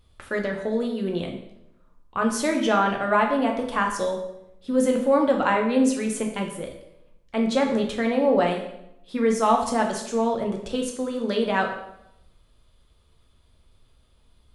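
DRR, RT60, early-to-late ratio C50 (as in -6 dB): 1.5 dB, 0.80 s, 6.5 dB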